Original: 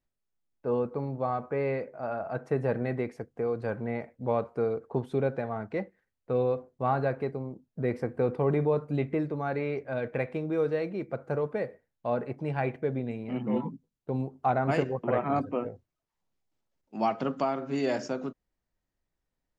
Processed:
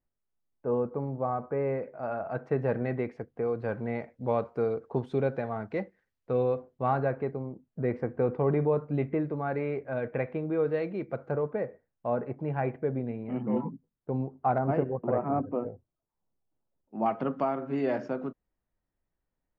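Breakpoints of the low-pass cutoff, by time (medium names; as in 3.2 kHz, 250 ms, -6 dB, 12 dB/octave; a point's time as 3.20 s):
1.5 kHz
from 1.83 s 3.1 kHz
from 3.70 s 5.9 kHz
from 6.31 s 3.7 kHz
from 6.97 s 2.2 kHz
from 10.74 s 3.5 kHz
from 11.31 s 1.7 kHz
from 14.58 s 1 kHz
from 17.06 s 2 kHz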